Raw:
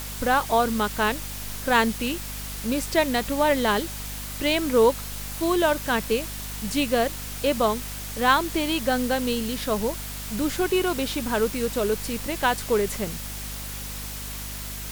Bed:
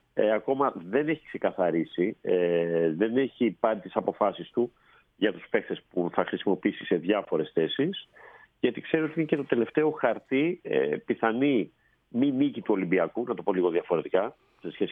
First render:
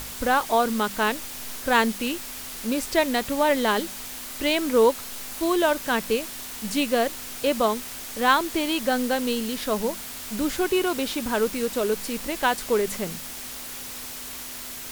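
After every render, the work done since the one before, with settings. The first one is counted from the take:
hum removal 50 Hz, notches 4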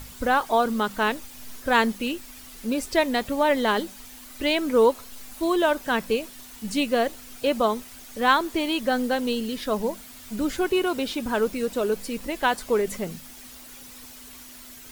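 broadband denoise 10 dB, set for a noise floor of −37 dBFS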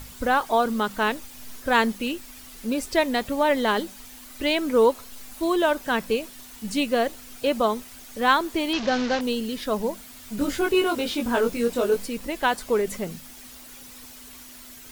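0:08.73–0:09.21: linear delta modulator 32 kbit/s, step −24 dBFS
0:10.36–0:12.06: double-tracking delay 21 ms −2.5 dB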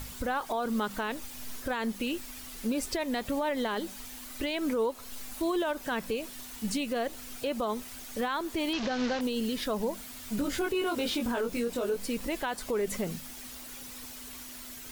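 downward compressor 4 to 1, threshold −25 dBFS, peak gain reduction 10 dB
brickwall limiter −22 dBFS, peak gain reduction 7.5 dB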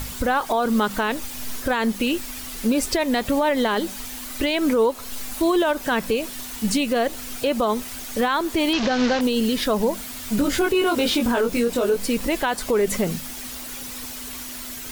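level +10 dB

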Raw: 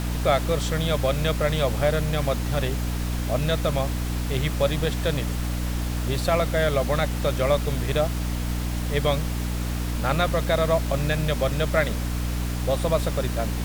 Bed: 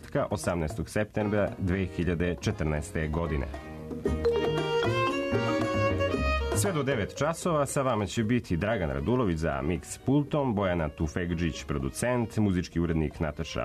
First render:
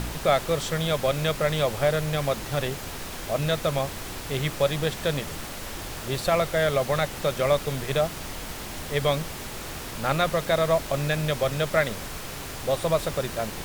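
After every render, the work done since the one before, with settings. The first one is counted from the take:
hum removal 60 Hz, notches 5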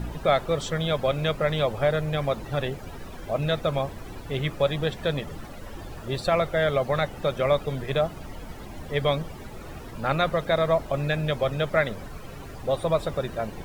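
broadband denoise 15 dB, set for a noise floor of −36 dBFS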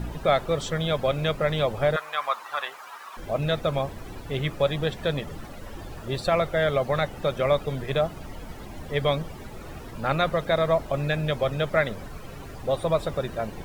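0:01.96–0:03.17: high-pass with resonance 1,100 Hz, resonance Q 3.4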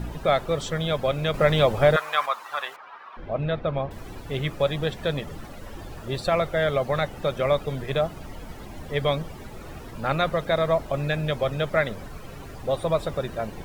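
0:01.34–0:02.26: clip gain +5 dB
0:02.76–0:03.91: high-frequency loss of the air 320 metres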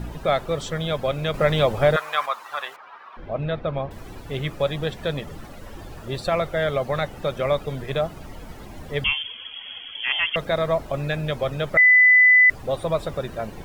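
0:09.04–0:10.36: voice inversion scrambler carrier 3,300 Hz
0:11.77–0:12.50: beep over 2,000 Hz −10 dBFS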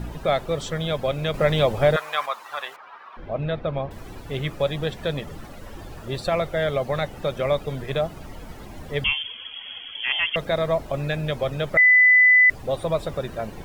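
dynamic equaliser 1,300 Hz, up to −3 dB, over −34 dBFS, Q 1.9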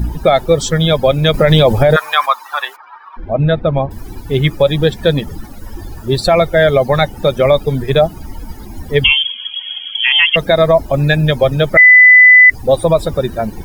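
spectral dynamics exaggerated over time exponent 1.5
boost into a limiter +17.5 dB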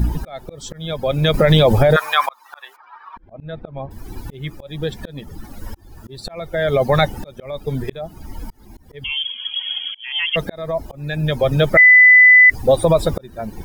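brickwall limiter −4.5 dBFS, peak gain reduction 3.5 dB
volume swells 705 ms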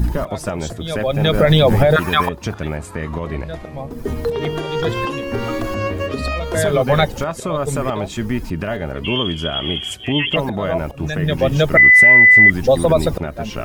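mix in bed +4.5 dB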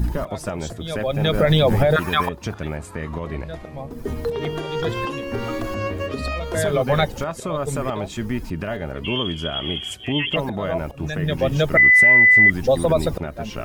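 level −4 dB

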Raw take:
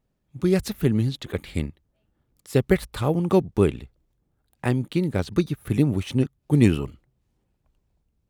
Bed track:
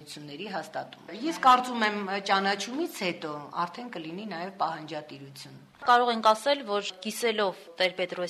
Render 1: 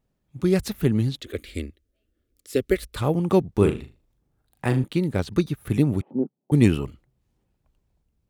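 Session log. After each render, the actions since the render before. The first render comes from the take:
0:01.20–0:02.96: phaser with its sweep stopped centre 370 Hz, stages 4
0:03.55–0:04.84: flutter between parallel walls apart 6.6 metres, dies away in 0.29 s
0:06.01–0:06.52: Chebyshev band-pass filter 190–850 Hz, order 3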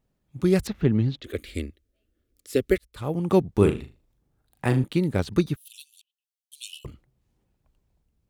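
0:00.67–0:01.24: high-frequency loss of the air 180 metres
0:02.78–0:03.40: fade in
0:05.56–0:06.85: Butterworth high-pass 2,800 Hz 96 dB per octave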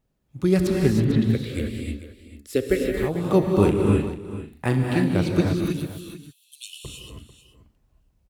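single-tap delay 444 ms −14 dB
reverb whose tail is shaped and stops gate 340 ms rising, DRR −0.5 dB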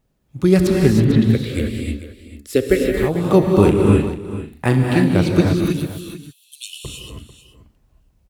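level +6 dB
brickwall limiter −1 dBFS, peak gain reduction 2 dB

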